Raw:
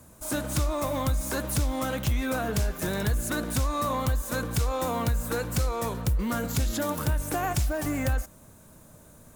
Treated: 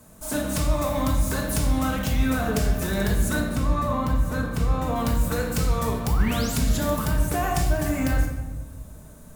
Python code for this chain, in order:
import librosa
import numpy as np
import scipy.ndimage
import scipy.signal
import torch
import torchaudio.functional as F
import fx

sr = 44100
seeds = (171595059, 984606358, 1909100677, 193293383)

y = fx.high_shelf(x, sr, hz=2700.0, db=-10.5, at=(3.4, 4.96))
y = fx.spec_paint(y, sr, seeds[0], shape='rise', start_s=6.05, length_s=0.53, low_hz=690.0, high_hz=11000.0, level_db=-38.0)
y = fx.room_shoebox(y, sr, seeds[1], volume_m3=580.0, walls='mixed', distance_m=1.5)